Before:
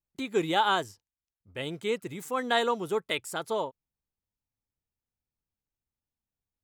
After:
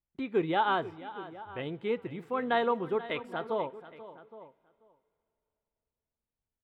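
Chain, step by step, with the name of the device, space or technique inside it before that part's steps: shout across a valley (air absorption 430 m; outdoor echo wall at 140 m, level -17 dB); echo 0.486 s -16 dB; two-slope reverb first 0.27 s, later 3.3 s, from -19 dB, DRR 16.5 dB

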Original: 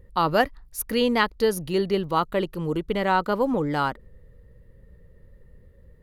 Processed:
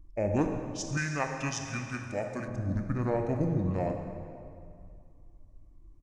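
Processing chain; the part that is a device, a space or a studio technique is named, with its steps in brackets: monster voice (pitch shift -8 st; formant shift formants -2.5 st; low shelf 110 Hz +7 dB; reverb RT60 2.3 s, pre-delay 24 ms, DRR 4 dB); 0.97–2.48 tilt +3 dB/oct; gain -8.5 dB

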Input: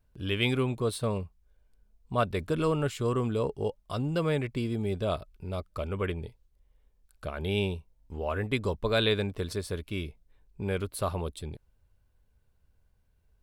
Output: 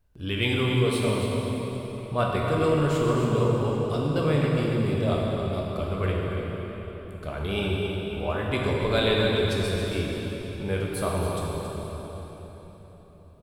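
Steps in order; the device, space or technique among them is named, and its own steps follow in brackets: cave (echo 0.277 s -9.5 dB; reverb RT60 4.2 s, pre-delay 10 ms, DRR -3 dB)

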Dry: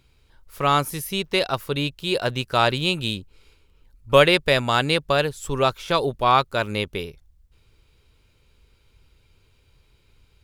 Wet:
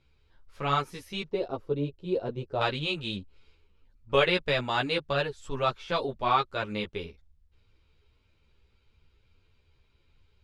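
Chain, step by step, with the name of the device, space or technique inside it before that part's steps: 1.28–2.61 EQ curve 210 Hz 0 dB, 420 Hz +6 dB, 1700 Hz -15 dB; string-machine ensemble chorus (ensemble effect; LPF 4800 Hz 12 dB/oct); gain -4 dB

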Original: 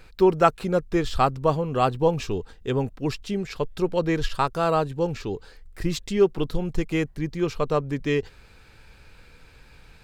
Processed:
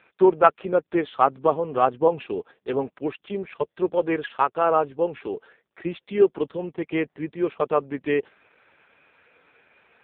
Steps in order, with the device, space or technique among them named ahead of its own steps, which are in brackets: 3.9–5.34 dynamic EQ 180 Hz, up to -3 dB, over -36 dBFS, Q 1.8; telephone (BPF 330–3100 Hz; gain +3.5 dB; AMR-NB 4.75 kbps 8000 Hz)

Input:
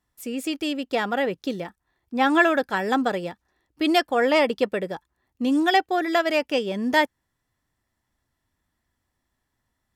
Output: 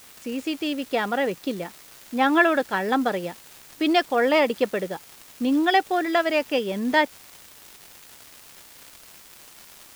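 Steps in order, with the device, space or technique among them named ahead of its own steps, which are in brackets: 78 rpm shellac record (BPF 110–5100 Hz; crackle 270/s -33 dBFS; white noise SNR 24 dB)

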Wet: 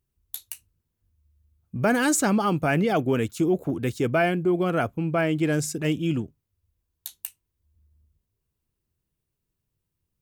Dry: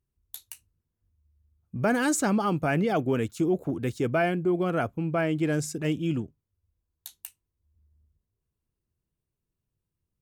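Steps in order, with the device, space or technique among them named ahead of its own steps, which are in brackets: presence and air boost (bell 2900 Hz +2 dB 1.4 oct; high shelf 11000 Hz +6.5 dB); gain +2.5 dB

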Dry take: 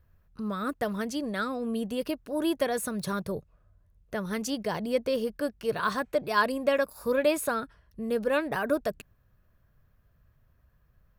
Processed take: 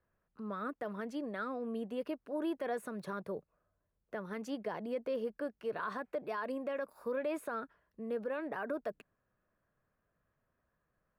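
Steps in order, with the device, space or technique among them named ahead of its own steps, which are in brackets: DJ mixer with the lows and highs turned down (three-band isolator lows -18 dB, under 200 Hz, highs -15 dB, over 2500 Hz; limiter -23 dBFS, peak gain reduction 11 dB); gain -5.5 dB

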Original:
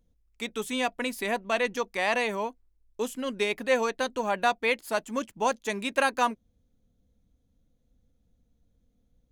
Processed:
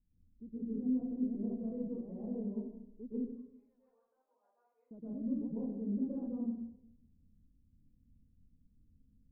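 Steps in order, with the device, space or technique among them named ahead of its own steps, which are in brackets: 3.16–4.91 HPF 1200 Hz 24 dB/oct; next room (LPF 290 Hz 24 dB/oct; reverb RT60 0.80 s, pre-delay 0.11 s, DRR -10 dB); gain -9 dB

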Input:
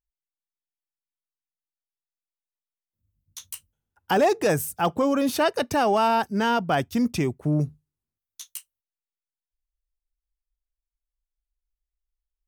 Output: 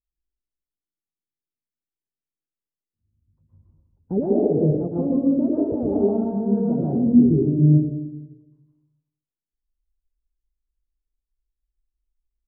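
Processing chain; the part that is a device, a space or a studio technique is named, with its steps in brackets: next room (LPF 420 Hz 24 dB/oct; reverb RT60 1.1 s, pre-delay 0.107 s, DRR -6 dB); 3.52–4.2 low shelf 250 Hz +8 dB

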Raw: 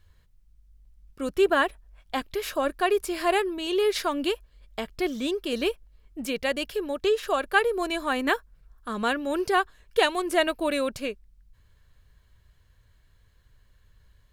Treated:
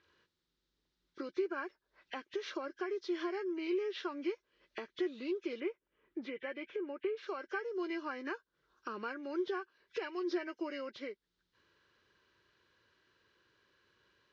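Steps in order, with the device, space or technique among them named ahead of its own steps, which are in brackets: hearing aid with frequency lowering (nonlinear frequency compression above 1500 Hz 1.5:1; compressor 4:1, threshold -40 dBFS, peak gain reduction 19.5 dB; speaker cabinet 330–5100 Hz, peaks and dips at 350 Hz +10 dB, 700 Hz -9 dB, 1500 Hz +3 dB, 2500 Hz -4 dB, 3800 Hz +5 dB); 5.6–7.17 band shelf 6400 Hz -16 dB

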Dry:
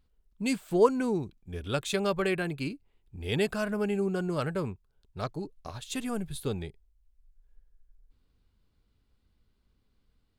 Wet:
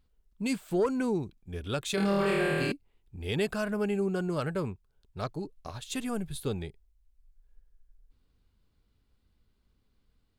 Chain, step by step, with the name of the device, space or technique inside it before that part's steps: 1.95–2.72 flutter echo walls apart 4.3 m, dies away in 1.4 s; soft clipper into limiter (soft clip -13.5 dBFS, distortion -19 dB; limiter -20 dBFS, peak gain reduction 6 dB)

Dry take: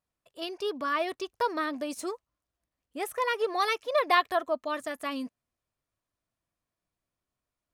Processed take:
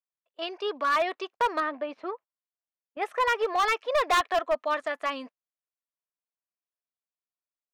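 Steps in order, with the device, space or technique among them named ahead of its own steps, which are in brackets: walkie-talkie (BPF 540–2900 Hz; hard clip -26 dBFS, distortion -9 dB; gate -50 dBFS, range -21 dB); 1.6–3.02 air absorption 350 m; gain +6.5 dB

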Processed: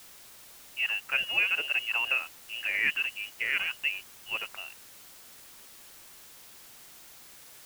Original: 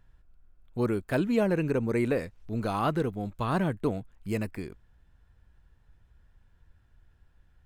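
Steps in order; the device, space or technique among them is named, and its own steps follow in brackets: scrambled radio voice (BPF 390–2900 Hz; inverted band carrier 3100 Hz; white noise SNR 17 dB); gain +1.5 dB

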